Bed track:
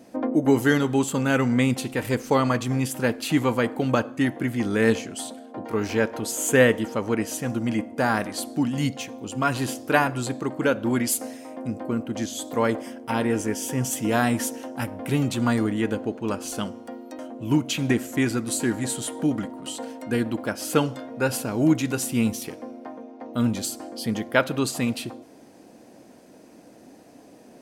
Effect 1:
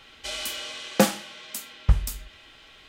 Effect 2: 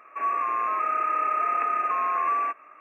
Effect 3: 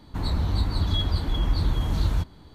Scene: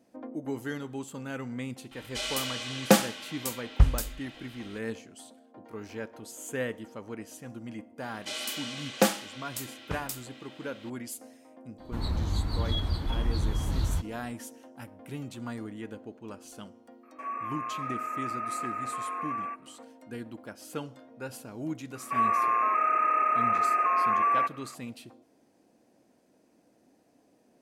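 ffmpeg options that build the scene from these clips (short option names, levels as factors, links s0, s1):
-filter_complex "[1:a]asplit=2[s0][s1];[2:a]asplit=2[s2][s3];[0:a]volume=0.168[s4];[s1]highpass=190[s5];[s3]alimiter=level_in=8.41:limit=0.891:release=50:level=0:latency=1[s6];[s0]atrim=end=2.88,asetpts=PTS-STARTPTS,volume=0.944,afade=t=in:d=0.004:c=hsin,afade=t=out:st=2.876:d=0.004:c=hsin,adelay=1910[s7];[s5]atrim=end=2.88,asetpts=PTS-STARTPTS,volume=0.708,afade=t=in:d=0.004:c=hsin,afade=t=out:st=2.876:d=0.004:c=hsin,adelay=353682S[s8];[3:a]atrim=end=2.54,asetpts=PTS-STARTPTS,volume=0.562,afade=t=in:d=0.004:c=hsin,afade=t=out:st=2.536:d=0.004:c=hsin,adelay=519498S[s9];[s2]atrim=end=2.8,asetpts=PTS-STARTPTS,volume=0.335,afade=t=in:d=0.004:c=hsin,afade=t=out:st=2.796:d=0.004:c=hsin,adelay=17030[s10];[s6]atrim=end=2.8,asetpts=PTS-STARTPTS,volume=0.141,afade=t=in:d=0.004:c=hsin,afade=t=out:st=2.796:d=0.004:c=hsin,adelay=21950[s11];[s4][s7][s8][s9][s10][s11]amix=inputs=6:normalize=0"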